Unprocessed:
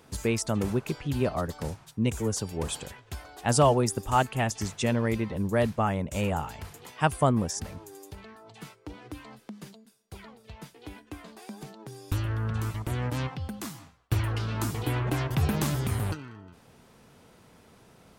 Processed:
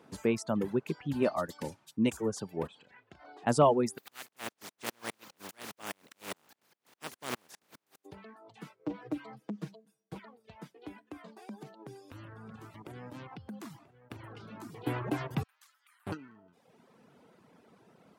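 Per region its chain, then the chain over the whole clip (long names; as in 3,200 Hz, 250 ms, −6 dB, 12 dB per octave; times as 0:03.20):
0:01.22–0:02.17: high-shelf EQ 2,300 Hz +8 dB + comb filter 3.4 ms, depth 31%
0:02.67–0:03.47: low-pass filter 4,900 Hz + downward compressor 10 to 1, threshold −44 dBFS + double-tracking delay 35 ms −8.5 dB
0:03.97–0:08.04: compressing power law on the bin magnitudes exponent 0.16 + tremolo with a ramp in dB swelling 4.9 Hz, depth 33 dB
0:08.79–0:10.19: low-shelf EQ 410 Hz +5.5 dB + comb filter 6.3 ms, depth 93% + highs frequency-modulated by the lows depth 0.34 ms
0:10.89–0:14.87: downward compressor, threshold −36 dBFS + single-tap delay 987 ms −12 dB
0:15.43–0:16.07: high-pass filter 1,200 Hz 24 dB per octave + noise gate −32 dBFS, range −16 dB
whole clip: reverb reduction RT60 1.1 s; Chebyshev high-pass filter 200 Hz, order 2; high-shelf EQ 3,200 Hz −11.5 dB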